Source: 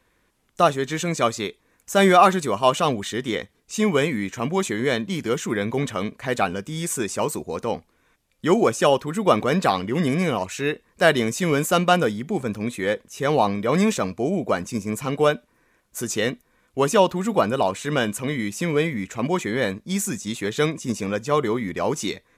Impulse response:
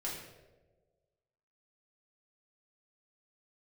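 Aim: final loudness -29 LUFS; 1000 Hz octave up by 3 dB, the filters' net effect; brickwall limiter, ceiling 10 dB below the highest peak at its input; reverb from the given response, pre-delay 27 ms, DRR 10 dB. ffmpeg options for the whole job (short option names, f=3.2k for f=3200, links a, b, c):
-filter_complex "[0:a]equalizer=f=1k:t=o:g=4,alimiter=limit=-10dB:level=0:latency=1,asplit=2[a][b];[1:a]atrim=start_sample=2205,adelay=27[c];[b][c]afir=irnorm=-1:irlink=0,volume=-11.5dB[d];[a][d]amix=inputs=2:normalize=0,volume=-5.5dB"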